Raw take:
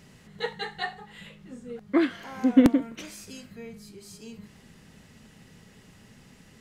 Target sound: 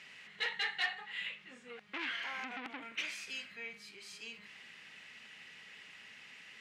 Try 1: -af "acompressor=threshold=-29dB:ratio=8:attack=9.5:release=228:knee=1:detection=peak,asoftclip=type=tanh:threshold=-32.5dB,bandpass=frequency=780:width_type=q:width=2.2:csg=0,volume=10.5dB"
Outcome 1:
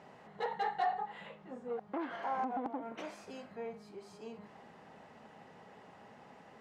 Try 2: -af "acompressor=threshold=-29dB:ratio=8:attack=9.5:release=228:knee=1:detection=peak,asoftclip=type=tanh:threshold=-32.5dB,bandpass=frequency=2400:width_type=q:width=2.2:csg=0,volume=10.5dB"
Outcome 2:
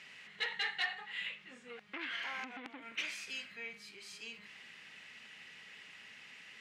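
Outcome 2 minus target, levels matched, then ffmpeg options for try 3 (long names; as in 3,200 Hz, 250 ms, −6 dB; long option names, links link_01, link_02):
downward compressor: peak gain reduction +6 dB
-af "acompressor=threshold=-22dB:ratio=8:attack=9.5:release=228:knee=1:detection=peak,asoftclip=type=tanh:threshold=-32.5dB,bandpass=frequency=2400:width_type=q:width=2.2:csg=0,volume=10.5dB"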